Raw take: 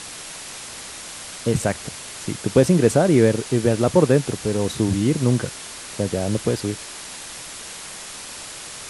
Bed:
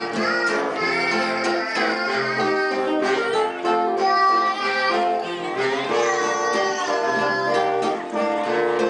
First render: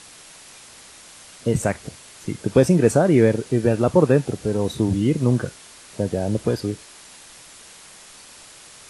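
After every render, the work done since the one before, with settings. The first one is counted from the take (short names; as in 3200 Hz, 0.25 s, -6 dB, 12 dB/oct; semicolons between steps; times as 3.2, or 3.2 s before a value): noise print and reduce 9 dB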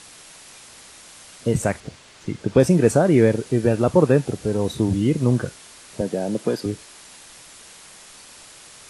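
1.8–2.6 air absorption 70 m; 6.01–6.66 HPF 160 Hz 24 dB/oct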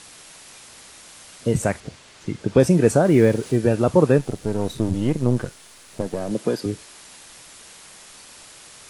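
3.05–3.57 G.711 law mismatch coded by mu; 4.18–6.31 half-wave gain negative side -7 dB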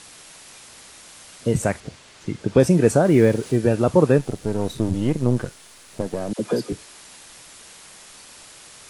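6.33–6.73 dispersion lows, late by 64 ms, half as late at 720 Hz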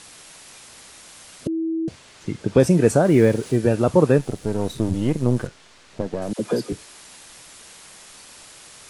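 1.47–1.88 bleep 325 Hz -21 dBFS; 5.47–6.22 air absorption 87 m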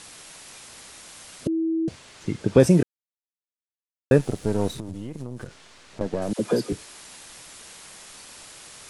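2.83–4.11 mute; 4.69–6.01 compressor 12:1, threshold -29 dBFS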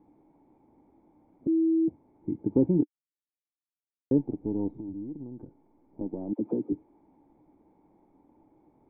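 in parallel at -7.5 dB: soft clip -16 dBFS, distortion -8 dB; on the sum: vocal tract filter u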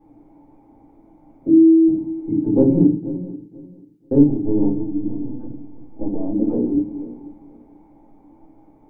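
regenerating reverse delay 0.244 s, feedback 46%, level -12 dB; shoebox room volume 120 m³, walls furnished, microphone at 3.9 m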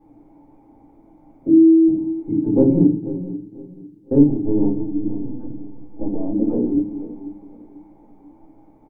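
feedback echo 0.498 s, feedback 40%, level -20 dB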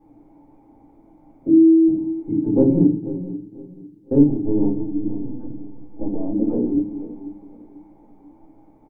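gain -1 dB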